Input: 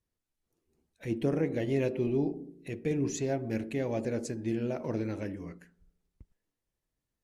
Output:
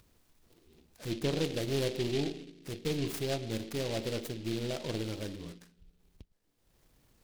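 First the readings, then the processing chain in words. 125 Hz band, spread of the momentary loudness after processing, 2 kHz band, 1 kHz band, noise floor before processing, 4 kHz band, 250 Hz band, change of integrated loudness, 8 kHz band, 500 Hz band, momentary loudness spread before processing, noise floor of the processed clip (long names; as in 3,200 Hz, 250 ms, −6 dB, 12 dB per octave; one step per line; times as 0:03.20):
−1.5 dB, 12 LU, +0.5 dB, −1.5 dB, below −85 dBFS, +12.5 dB, −4.5 dB, −2.5 dB, +0.5 dB, −2.5 dB, 11 LU, −72 dBFS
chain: gain on one half-wave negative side −3 dB
upward compression, threshold −47 dBFS
dynamic equaliser 250 Hz, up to −5 dB, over −46 dBFS, Q 2.5
short delay modulated by noise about 3,200 Hz, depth 0.12 ms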